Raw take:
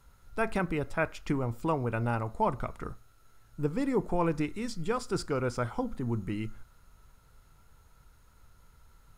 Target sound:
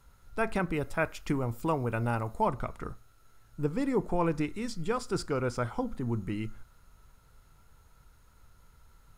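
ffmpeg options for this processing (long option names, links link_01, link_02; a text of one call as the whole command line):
ffmpeg -i in.wav -filter_complex "[0:a]asettb=1/sr,asplit=3[link_01][link_02][link_03];[link_01]atrim=end=0.734[link_04];[link_02]atrim=start=0.73:end=2.48,asetpts=PTS-STARTPTS,afade=type=in:duration=0.004:curve=qsin,afade=type=out:start_time=1.746:duration=0.004:curve=qsin,highshelf=frequency=8900:gain=9[link_05];[link_03]atrim=start=2.476[link_06];[link_04][link_05]acrossfade=duration=0.004:curve1=hsin:curve2=qsin[link_07];[link_07][link_06]acrossfade=duration=0.004:curve1=qsin:curve2=hsin" out.wav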